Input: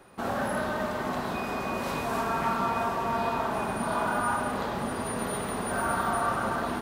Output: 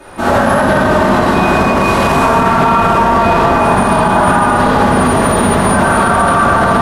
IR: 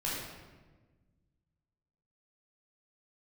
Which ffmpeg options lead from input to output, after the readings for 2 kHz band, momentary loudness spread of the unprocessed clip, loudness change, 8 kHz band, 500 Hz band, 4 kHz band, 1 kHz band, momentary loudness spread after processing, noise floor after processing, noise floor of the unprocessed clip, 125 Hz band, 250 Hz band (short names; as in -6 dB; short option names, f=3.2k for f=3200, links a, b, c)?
+18.5 dB, 4 LU, +19.0 dB, +16.0 dB, +19.0 dB, +17.5 dB, +18.5 dB, 1 LU, -12 dBFS, -33 dBFS, +21.5 dB, +20.0 dB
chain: -filter_complex "[0:a]aeval=exprs='0.178*sin(PI/2*1.41*val(0)/0.178)':c=same[a];[1:a]atrim=start_sample=2205,asetrate=25137,aresample=44100[b];[a][b]afir=irnorm=-1:irlink=0,alimiter=level_in=8dB:limit=-1dB:release=50:level=0:latency=1,volume=-1dB"